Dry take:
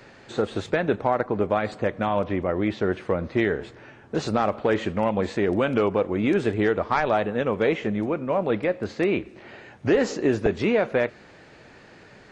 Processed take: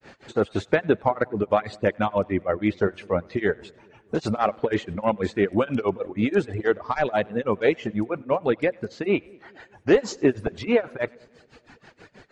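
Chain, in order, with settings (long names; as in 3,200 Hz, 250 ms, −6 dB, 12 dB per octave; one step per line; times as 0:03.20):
granular cloud 196 ms, grains 6.2 per second, spray 16 ms, pitch spread up and down by 0 semitones
echo with a time of its own for lows and highs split 600 Hz, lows 202 ms, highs 97 ms, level −15.5 dB
reverb reduction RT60 1.5 s
level +4 dB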